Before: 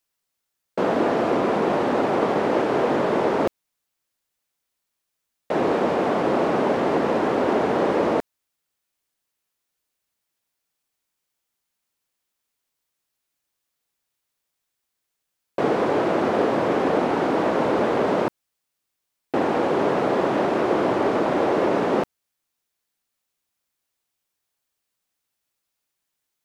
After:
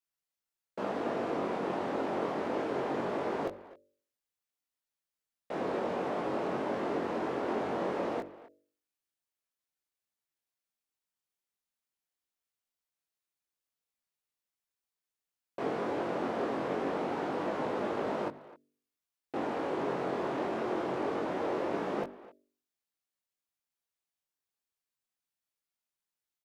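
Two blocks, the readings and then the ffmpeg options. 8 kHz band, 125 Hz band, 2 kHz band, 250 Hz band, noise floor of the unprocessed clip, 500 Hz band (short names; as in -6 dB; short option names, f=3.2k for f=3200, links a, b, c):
n/a, -12.5 dB, -12.0 dB, -12.5 dB, -80 dBFS, -12.5 dB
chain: -filter_complex "[0:a]bandreject=f=48.8:t=h:w=4,bandreject=f=97.6:t=h:w=4,bandreject=f=146.4:t=h:w=4,bandreject=f=195.2:t=h:w=4,bandreject=f=244:t=h:w=4,bandreject=f=292.8:t=h:w=4,bandreject=f=341.6:t=h:w=4,bandreject=f=390.4:t=h:w=4,bandreject=f=439.2:t=h:w=4,bandreject=f=488:t=h:w=4,bandreject=f=536.8:t=h:w=4,bandreject=f=585.6:t=h:w=4,bandreject=f=634.4:t=h:w=4,flanger=delay=19.5:depth=2.7:speed=0.22,asplit=2[a][b];[b]adelay=260,highpass=300,lowpass=3.4k,asoftclip=type=hard:threshold=-20dB,volume=-17dB[c];[a][c]amix=inputs=2:normalize=0,volume=-9dB"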